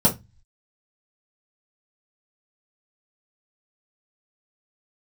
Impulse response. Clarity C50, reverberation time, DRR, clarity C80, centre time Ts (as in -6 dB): 13.5 dB, 0.20 s, -6.5 dB, 25.0 dB, 15 ms